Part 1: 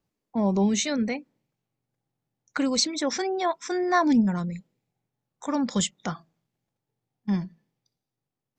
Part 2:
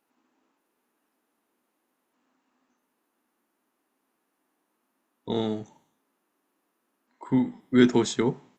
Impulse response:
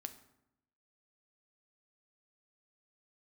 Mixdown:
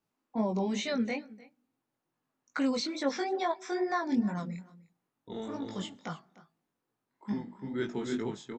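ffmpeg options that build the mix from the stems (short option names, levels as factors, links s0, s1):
-filter_complex "[0:a]acrossover=split=4000[s0][s1];[s1]acompressor=threshold=0.00708:ratio=4:attack=1:release=60[s2];[s0][s2]amix=inputs=2:normalize=0,lowshelf=f=100:g=-12,alimiter=limit=0.15:level=0:latency=1:release=487,volume=0.794,asplit=3[s3][s4][s5];[s4]volume=0.335[s6];[s5]volume=0.1[s7];[1:a]highshelf=f=5100:g=-6,volume=0.335,asplit=3[s8][s9][s10];[s9]volume=0.668[s11];[s10]apad=whole_len=378470[s12];[s3][s12]sidechaincompress=threshold=0.00282:ratio=3:attack=11:release=627[s13];[2:a]atrim=start_sample=2205[s14];[s6][s14]afir=irnorm=-1:irlink=0[s15];[s7][s11]amix=inputs=2:normalize=0,aecho=0:1:302:1[s16];[s13][s8][s15][s16]amix=inputs=4:normalize=0,flanger=delay=18:depth=4.4:speed=2.3"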